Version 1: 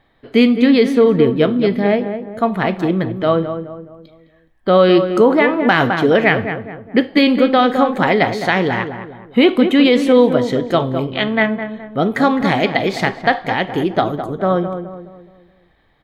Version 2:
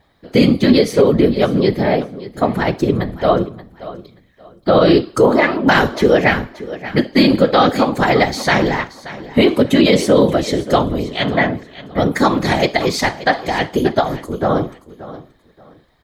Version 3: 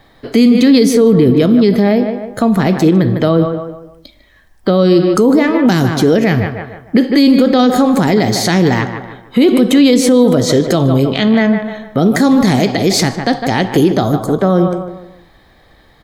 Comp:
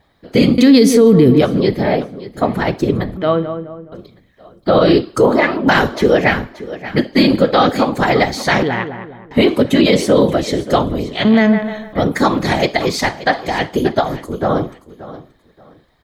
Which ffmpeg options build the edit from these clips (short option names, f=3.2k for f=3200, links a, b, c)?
-filter_complex "[2:a]asplit=2[a][b];[0:a]asplit=2[c][d];[1:a]asplit=5[e][f][g][h][i];[e]atrim=end=0.582[j];[a]atrim=start=0.578:end=1.412[k];[f]atrim=start=1.408:end=3.172[l];[c]atrim=start=3.168:end=3.922[m];[g]atrim=start=3.918:end=8.632[n];[d]atrim=start=8.628:end=9.312[o];[h]atrim=start=9.308:end=11.252[p];[b]atrim=start=11.248:end=11.932[q];[i]atrim=start=11.928[r];[j][k]acrossfade=d=0.004:c1=hsin:c2=hsin[s];[s][l]acrossfade=d=0.004:c1=hsin:c2=hsin[t];[t][m]acrossfade=d=0.004:c1=hsin:c2=hsin[u];[u][n]acrossfade=d=0.004:c1=hsin:c2=hsin[v];[v][o]acrossfade=d=0.004:c1=hsin:c2=hsin[w];[w][p]acrossfade=d=0.004:c1=hsin:c2=hsin[x];[x][q]acrossfade=d=0.004:c1=hsin:c2=hsin[y];[y][r]acrossfade=d=0.004:c1=hsin:c2=hsin"